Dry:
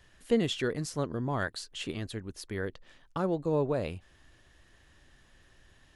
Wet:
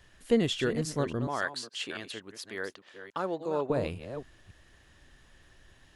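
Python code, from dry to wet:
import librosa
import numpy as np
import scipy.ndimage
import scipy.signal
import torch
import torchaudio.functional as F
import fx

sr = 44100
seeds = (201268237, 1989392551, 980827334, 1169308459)

y = fx.reverse_delay(x, sr, ms=282, wet_db=-10)
y = fx.weighting(y, sr, curve='A', at=(1.27, 3.7))
y = y * 10.0 ** (1.5 / 20.0)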